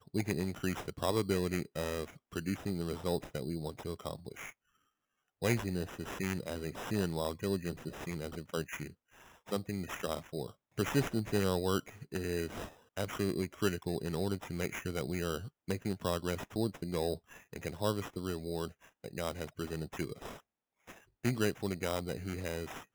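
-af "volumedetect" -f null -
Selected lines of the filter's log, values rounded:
mean_volume: -36.9 dB
max_volume: -16.6 dB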